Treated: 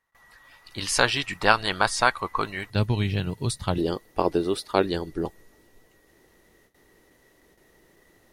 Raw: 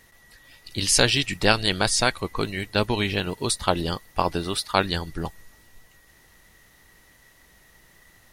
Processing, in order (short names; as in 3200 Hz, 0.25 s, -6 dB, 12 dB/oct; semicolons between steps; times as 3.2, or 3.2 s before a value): gate with hold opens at -45 dBFS; bell 1100 Hz +14.5 dB 1.6 oct, from 2.7 s 120 Hz, from 3.78 s 380 Hz; gain -7.5 dB